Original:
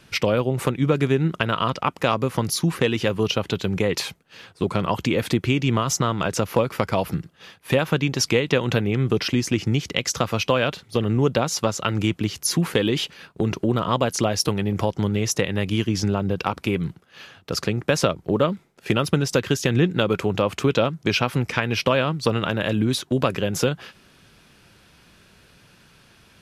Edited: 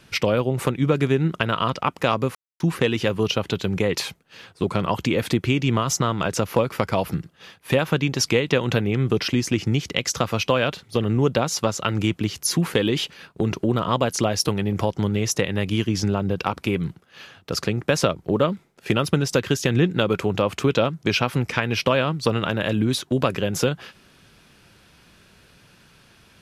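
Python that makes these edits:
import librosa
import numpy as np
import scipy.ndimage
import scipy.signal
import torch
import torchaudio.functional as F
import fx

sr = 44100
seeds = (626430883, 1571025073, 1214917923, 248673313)

y = fx.edit(x, sr, fx.silence(start_s=2.35, length_s=0.25), tone=tone)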